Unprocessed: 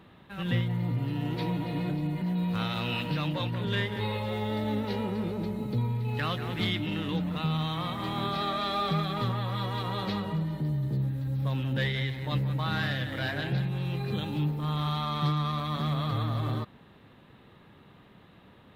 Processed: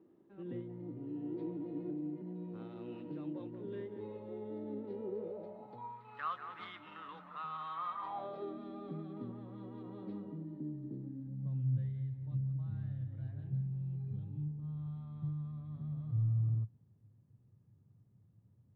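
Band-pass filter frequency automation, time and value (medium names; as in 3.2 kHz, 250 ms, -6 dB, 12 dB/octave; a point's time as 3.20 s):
band-pass filter, Q 5
4.95 s 340 Hz
6.10 s 1.2 kHz
7.97 s 1.2 kHz
8.58 s 290 Hz
11.09 s 290 Hz
11.82 s 110 Hz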